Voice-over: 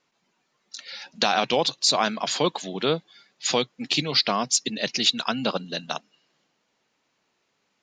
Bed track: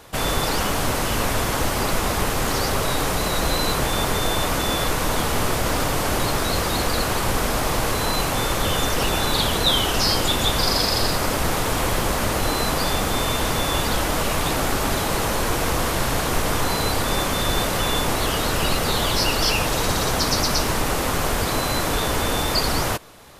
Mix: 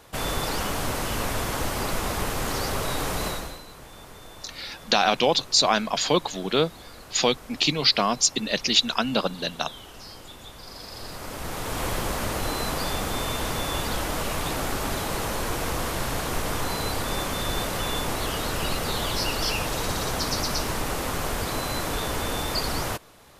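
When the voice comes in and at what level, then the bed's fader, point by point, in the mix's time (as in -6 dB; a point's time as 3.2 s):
3.70 s, +1.5 dB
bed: 3.28 s -5.5 dB
3.65 s -23 dB
10.61 s -23 dB
11.85 s -6 dB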